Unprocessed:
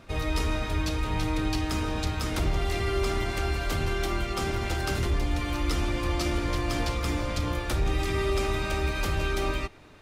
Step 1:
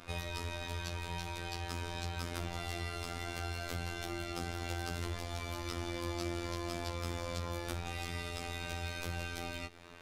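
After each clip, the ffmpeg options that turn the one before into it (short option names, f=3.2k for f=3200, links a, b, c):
-filter_complex "[0:a]lowshelf=f=370:g=-7,acrossover=split=470|3100[a][b][c];[a]acompressor=threshold=-39dB:ratio=4[d];[b]acompressor=threshold=-47dB:ratio=4[e];[c]acompressor=threshold=-49dB:ratio=4[f];[d][e][f]amix=inputs=3:normalize=0,afftfilt=real='hypot(re,im)*cos(PI*b)':imag='0':win_size=2048:overlap=0.75,volume=4.5dB"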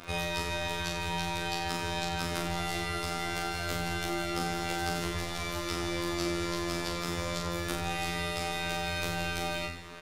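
-filter_complex "[0:a]lowshelf=f=60:g=-6.5,asplit=2[a][b];[b]aecho=0:1:40|88|145.6|214.7|297.7:0.631|0.398|0.251|0.158|0.1[c];[a][c]amix=inputs=2:normalize=0,volume=6dB"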